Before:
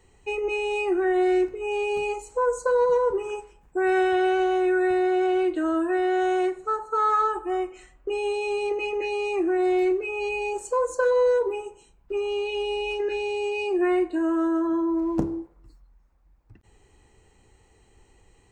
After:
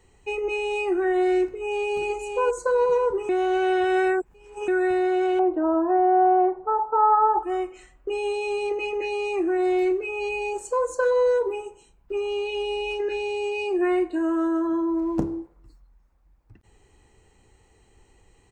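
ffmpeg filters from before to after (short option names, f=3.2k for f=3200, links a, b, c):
-filter_complex "[0:a]asplit=2[a][b];[b]afade=t=in:st=1.45:d=0.01,afade=t=out:st=1.94:d=0.01,aecho=0:1:560|1120|1680|2240:0.530884|0.159265|0.0477796|0.0143339[c];[a][c]amix=inputs=2:normalize=0,asettb=1/sr,asplit=3[d][e][f];[d]atrim=end=5.394[g];[e]atrim=start=5.39:end=7.43,asetpts=PTS-STARTPTS,afade=t=in:d=0.004:c=qsin,afade=t=out:st=2.036:d=0.004:c=qsin,lowpass=f=870:t=q:w=4.4[h];[f]atrim=start=7.426[i];[g][h]acrossfade=d=0.004:c1=hsin:c2=qsin[j];[j][i]acrossfade=d=0.004:c1=qsin:c2=hsin,asplit=3[k][l][m];[k]atrim=end=3.292[n];[l]atrim=start=3.288:end=4.682,asetpts=PTS-STARTPTS,areverse[o];[m]atrim=start=4.678[p];[n][o]acrossfade=d=0.004:c1=hsin:c2=hsin[q];[q][p]acrossfade=d=0.004:c1=hsin:c2=hsin"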